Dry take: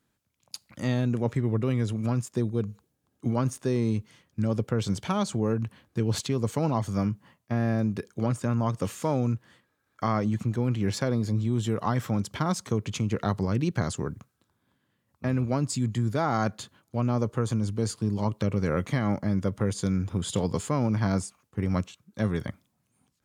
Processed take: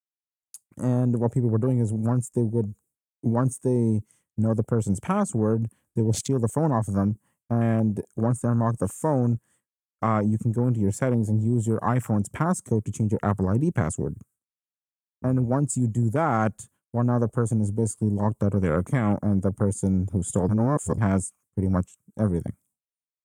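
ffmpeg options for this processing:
-filter_complex "[0:a]asplit=3[s0][s1][s2];[s0]atrim=end=20.492[s3];[s1]atrim=start=20.488:end=20.982,asetpts=PTS-STARTPTS,areverse[s4];[s2]atrim=start=20.978[s5];[s3][s4]acrossfade=d=0.004:c1=hsin:c2=hsin[s6];[s6][s5]acrossfade=d=0.004:c1=hsin:c2=hsin,afwtdn=0.0158,agate=range=0.0224:threshold=0.00141:ratio=3:detection=peak,highshelf=f=6100:t=q:w=3:g=13,volume=1.5"

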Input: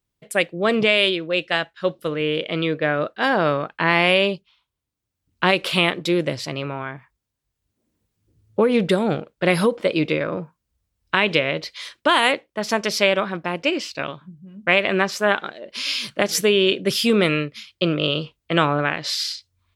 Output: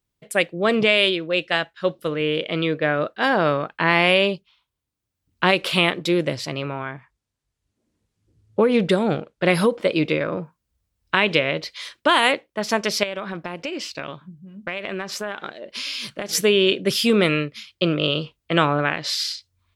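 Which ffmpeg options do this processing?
-filter_complex "[0:a]asettb=1/sr,asplit=3[s0][s1][s2];[s0]atrim=end=6.924[s3];[s1]atrim=start=6.92:end=9.55,asetpts=PTS-STARTPTS,afade=t=in:d=0.004:c=qsin,afade=t=out:st=2.626:d=0.004:c=qsin,lowpass=10000[s4];[s2]atrim=start=9.546[s5];[s3][s4]acrossfade=d=0.004:c1=hsin:c2=qsin[s6];[s6][s5]acrossfade=d=0.004:c1=qsin:c2=hsin,asettb=1/sr,asplit=3[s7][s8][s9];[s7]atrim=end=13.034[s10];[s8]atrim=start=13.03:end=16.33,asetpts=PTS-STARTPTS,afade=t=in:d=0.004:c=qsin,afade=t=out:st=3.296:d=0.004:c=qsin,acompressor=threshold=0.0562:ratio=5:attack=3.2:release=140:knee=1:detection=peak[s11];[s9]atrim=start=16.326[s12];[s10][s11]acrossfade=d=0.004:c1=hsin:c2=qsin[s13];[s13][s12]acrossfade=d=0.004:c1=qsin:c2=hsin"

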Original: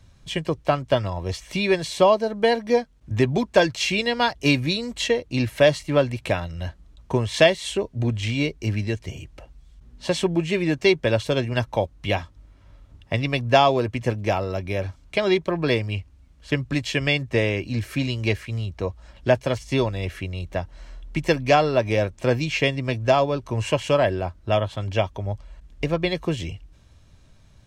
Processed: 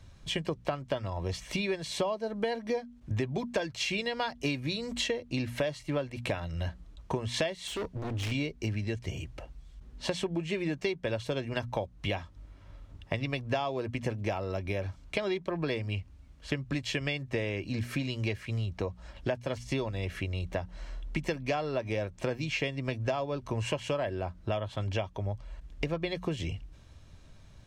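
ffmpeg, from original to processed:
-filter_complex "[0:a]asettb=1/sr,asplit=3[s0][s1][s2];[s0]atrim=end=7.674[s3];[s1]atrim=start=7.67:end=8.32,asetpts=PTS-STARTPTS,afade=t=in:d=0.004:c=qsin,afade=t=out:st=0.646:d=0.004:c=qsin,volume=33.5,asoftclip=hard,volume=0.0299[s4];[s2]atrim=start=8.316[s5];[s3][s4]acrossfade=d=0.004:c1=hsin:c2=qsin[s6];[s6][s5]acrossfade=d=0.004:c1=qsin:c2=hsin,highshelf=f=7100:g=-4,bandreject=f=60:t=h:w=6,bandreject=f=120:t=h:w=6,bandreject=f=180:t=h:w=6,bandreject=f=240:t=h:w=6,acompressor=threshold=0.0355:ratio=6"

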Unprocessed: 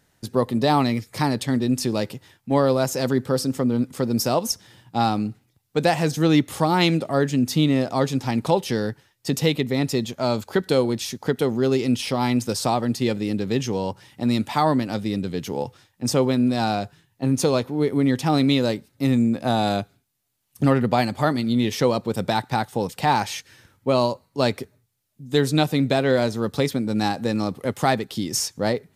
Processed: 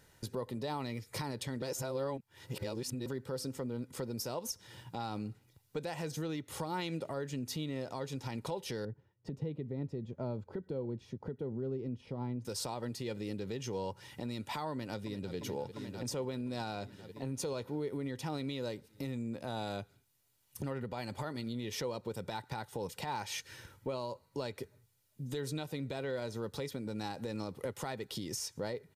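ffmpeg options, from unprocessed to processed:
-filter_complex "[0:a]asettb=1/sr,asplit=3[s0][s1][s2];[s0]atrim=end=8.854[s3];[s1]atrim=start=8.85:end=12.45,asetpts=PTS-STARTPTS,afade=t=in:d=0.004:c=qsin,afade=t=out:st=3.596:d=0.004:c=qsin,bandpass=f=140:t=q:w=0.59[s4];[s2]atrim=start=12.446[s5];[s3][s4]acrossfade=d=0.004:c1=hsin:c2=qsin[s6];[s6][s5]acrossfade=d=0.004:c1=qsin:c2=hsin,asplit=2[s7][s8];[s8]afade=t=in:st=14.71:d=0.01,afade=t=out:st=15.36:d=0.01,aecho=0:1:350|700|1050|1400|1750|2100|2450|2800|3150|3500|3850:0.223872|0.167904|0.125928|0.094446|0.0708345|0.0531259|0.0398444|0.0298833|0.0224125|0.0168094|0.012607[s9];[s7][s9]amix=inputs=2:normalize=0,asplit=3[s10][s11][s12];[s10]atrim=end=1.622[s13];[s11]atrim=start=1.618:end=3.062,asetpts=PTS-STARTPTS,areverse[s14];[s12]atrim=start=3.058[s15];[s13][s14]acrossfade=d=0.004:c1=hsin:c2=hsin[s16];[s16][s15]acrossfade=d=0.004:c1=hsin:c2=hsin,acompressor=threshold=0.0158:ratio=3,alimiter=level_in=1.68:limit=0.0631:level=0:latency=1:release=131,volume=0.596,aecho=1:1:2.1:0.35"

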